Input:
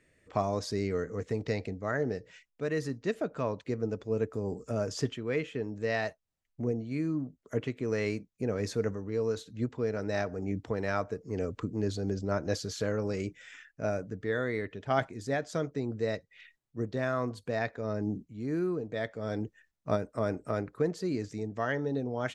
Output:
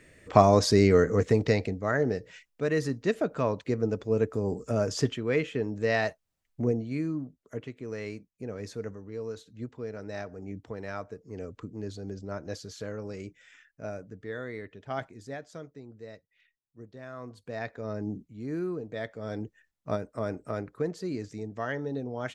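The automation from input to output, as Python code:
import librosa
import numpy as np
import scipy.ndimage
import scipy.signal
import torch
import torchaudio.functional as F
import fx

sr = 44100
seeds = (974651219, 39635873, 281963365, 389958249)

y = fx.gain(x, sr, db=fx.line((1.15, 11.5), (1.78, 4.5), (6.7, 4.5), (7.63, -6.0), (15.16, -6.0), (15.86, -13.5), (16.99, -13.5), (17.76, -1.5)))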